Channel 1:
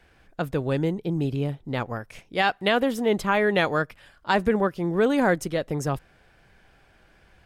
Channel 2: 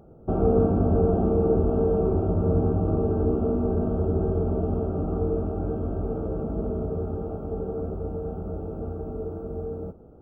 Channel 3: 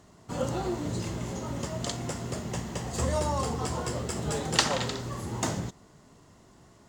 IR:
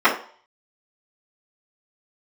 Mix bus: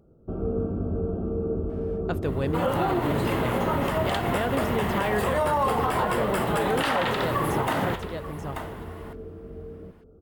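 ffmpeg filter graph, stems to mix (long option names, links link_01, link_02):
-filter_complex "[0:a]deesser=0.8,adelay=1700,volume=-2.5dB,asplit=2[link_01][link_02];[link_02]volume=-7dB[link_03];[1:a]equalizer=frequency=790:width=2.4:gain=-9.5,volume=-6.5dB,asplit=2[link_04][link_05];[link_05]volume=-16dB[link_06];[2:a]highshelf=frequency=4100:width_type=q:width=1.5:gain=-8.5,aexciter=amount=11.8:drive=6.1:freq=9700,equalizer=frequency=1100:width=0.31:gain=14,adelay=2250,volume=2.5dB,asplit=2[link_07][link_08];[link_08]volume=-18.5dB[link_09];[link_03][link_06][link_09]amix=inputs=3:normalize=0,aecho=0:1:884:1[link_10];[link_01][link_04][link_07][link_10]amix=inputs=4:normalize=0,alimiter=limit=-15.5dB:level=0:latency=1:release=103"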